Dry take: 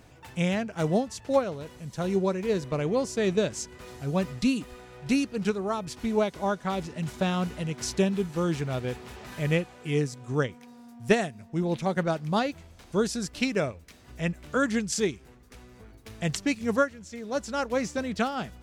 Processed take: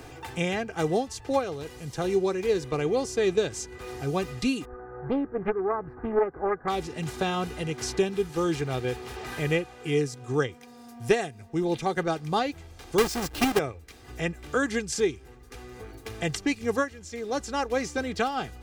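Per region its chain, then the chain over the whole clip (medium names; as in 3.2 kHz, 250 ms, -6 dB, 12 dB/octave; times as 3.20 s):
4.65–6.68 s: elliptic low-pass 1.6 kHz, stop band 50 dB + loudspeaker Doppler distortion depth 0.68 ms
12.98–13.59 s: square wave that keeps the level + tape noise reduction on one side only encoder only
whole clip: comb 2.5 ms, depth 57%; three bands compressed up and down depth 40%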